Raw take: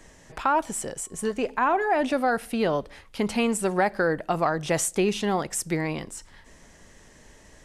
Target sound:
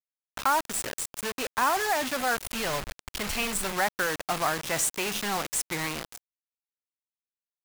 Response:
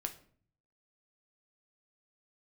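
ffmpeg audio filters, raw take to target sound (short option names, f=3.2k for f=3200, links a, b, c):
-filter_complex "[0:a]asplit=3[a][b][c];[a]afade=t=out:st=2.35:d=0.02[d];[b]asubboost=boost=11.5:cutoff=84,afade=t=in:st=2.35:d=0.02,afade=t=out:st=3.71:d=0.02[e];[c]afade=t=in:st=3.71:d=0.02[f];[d][e][f]amix=inputs=3:normalize=0,acrusher=bits=4:mix=0:aa=0.000001,acrossover=split=810[g][h];[g]asoftclip=type=hard:threshold=-33.5dB[i];[i][h]amix=inputs=2:normalize=0"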